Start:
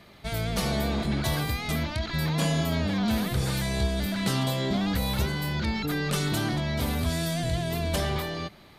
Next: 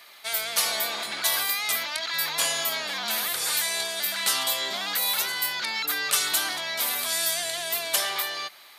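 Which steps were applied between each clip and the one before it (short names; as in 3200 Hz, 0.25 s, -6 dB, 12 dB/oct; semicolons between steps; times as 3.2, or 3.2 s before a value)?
HPF 1000 Hz 12 dB/oct; high shelf 6700 Hz +11 dB; gain +5 dB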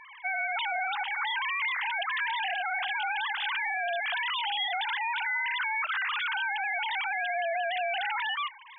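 sine-wave speech; limiter -24.5 dBFS, peak gain reduction 10.5 dB; gain +1 dB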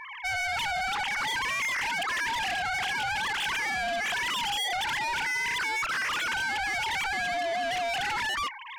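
soft clip -35.5 dBFS, distortion -9 dB; gain +8 dB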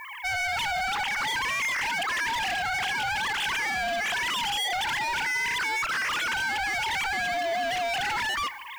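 added noise violet -59 dBFS; plate-style reverb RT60 1.5 s, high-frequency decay 0.95×, DRR 19.5 dB; gain +1.5 dB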